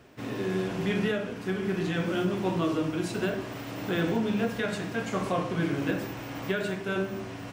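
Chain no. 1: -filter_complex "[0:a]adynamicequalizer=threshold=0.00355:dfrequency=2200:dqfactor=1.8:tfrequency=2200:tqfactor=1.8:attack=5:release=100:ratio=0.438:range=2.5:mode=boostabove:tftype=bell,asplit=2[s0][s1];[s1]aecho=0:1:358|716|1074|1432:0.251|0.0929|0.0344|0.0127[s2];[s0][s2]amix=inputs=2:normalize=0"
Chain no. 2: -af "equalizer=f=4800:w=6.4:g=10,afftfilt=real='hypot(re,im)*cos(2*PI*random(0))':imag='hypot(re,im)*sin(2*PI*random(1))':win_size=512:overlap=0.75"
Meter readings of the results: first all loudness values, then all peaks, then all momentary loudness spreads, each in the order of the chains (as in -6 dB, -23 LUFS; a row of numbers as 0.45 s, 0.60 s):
-29.0 LUFS, -36.0 LUFS; -14.0 dBFS, -19.5 dBFS; 6 LU, 7 LU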